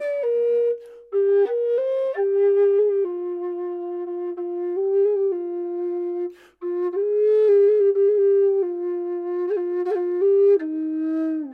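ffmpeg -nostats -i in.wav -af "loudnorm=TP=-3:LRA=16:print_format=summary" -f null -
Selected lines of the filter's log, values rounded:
Input Integrated:    -21.7 LUFS
Input True Peak:     -10.7 dBTP
Input LRA:             5.0 LU
Input Threshold:     -31.8 LUFS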